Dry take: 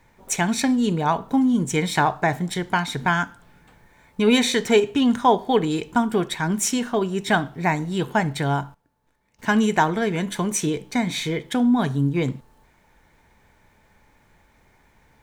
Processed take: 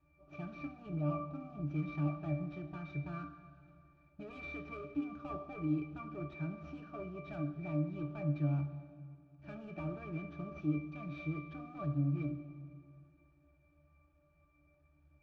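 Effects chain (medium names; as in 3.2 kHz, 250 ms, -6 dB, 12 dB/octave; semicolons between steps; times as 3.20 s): CVSD coder 32 kbps; peaking EQ 140 Hz -4.5 dB 2.6 oct; overload inside the chain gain 25 dB; pitch-class resonator D, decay 0.4 s; plate-style reverb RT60 2.4 s, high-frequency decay 0.85×, DRR 9.5 dB; trim +6.5 dB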